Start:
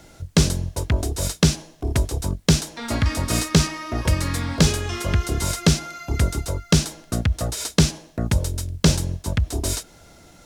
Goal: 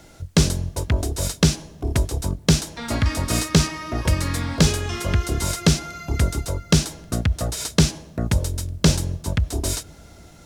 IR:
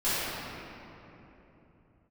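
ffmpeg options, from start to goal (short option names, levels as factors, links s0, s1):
-filter_complex "[0:a]asplit=2[s0][s1];[1:a]atrim=start_sample=2205,lowpass=1200[s2];[s1][s2]afir=irnorm=-1:irlink=0,volume=0.0168[s3];[s0][s3]amix=inputs=2:normalize=0"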